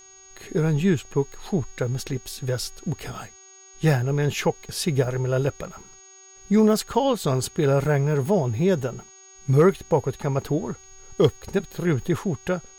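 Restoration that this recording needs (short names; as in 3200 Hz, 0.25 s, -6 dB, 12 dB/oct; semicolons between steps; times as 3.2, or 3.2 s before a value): clip repair -7.5 dBFS; de-hum 382.9 Hz, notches 20; notch 6600 Hz, Q 30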